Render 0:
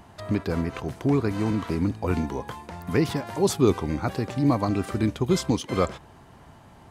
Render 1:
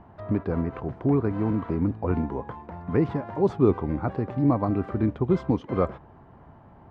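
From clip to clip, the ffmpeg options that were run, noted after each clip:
-af "lowpass=1300"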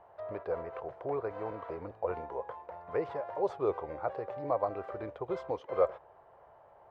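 -af "lowshelf=f=360:t=q:w=3:g=-13.5,volume=0.447"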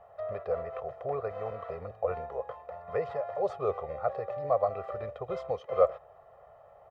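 -af "aecho=1:1:1.6:0.84"

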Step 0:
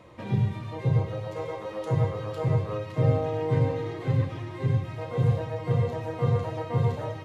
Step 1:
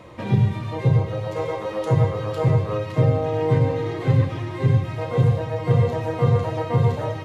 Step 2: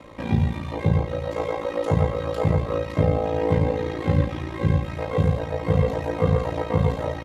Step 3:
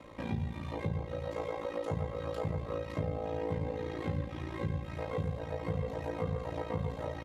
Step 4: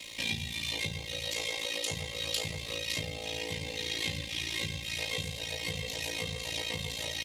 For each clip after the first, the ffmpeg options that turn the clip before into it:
-af "alimiter=limit=0.158:level=0:latency=1:release=432,volume=2.37"
-af "aeval=exprs='val(0)*sin(2*PI*28*n/s)':c=same,aecho=1:1:3.7:0.33,volume=1.26"
-af "acompressor=threshold=0.0447:ratio=2.5,volume=0.447"
-af "aexciter=amount=14:drive=8.7:freq=2200,volume=0.531"

